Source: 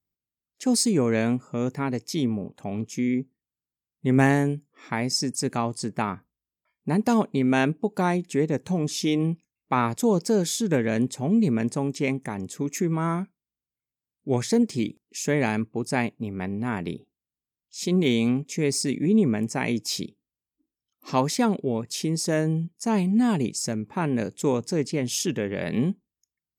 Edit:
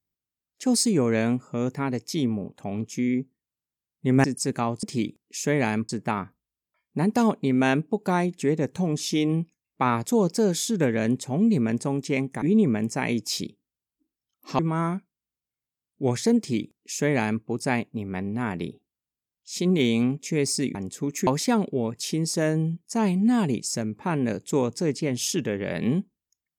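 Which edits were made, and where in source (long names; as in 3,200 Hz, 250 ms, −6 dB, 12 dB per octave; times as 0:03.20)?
0:04.24–0:05.21: remove
0:12.33–0:12.85: swap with 0:19.01–0:21.18
0:14.64–0:15.70: duplicate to 0:05.80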